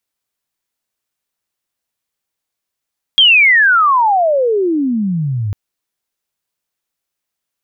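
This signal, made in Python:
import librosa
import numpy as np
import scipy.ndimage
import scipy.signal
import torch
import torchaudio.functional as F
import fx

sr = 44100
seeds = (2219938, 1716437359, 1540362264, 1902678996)

y = fx.chirp(sr, length_s=2.35, from_hz=3300.0, to_hz=97.0, law='logarithmic', from_db=-4.5, to_db=-15.5)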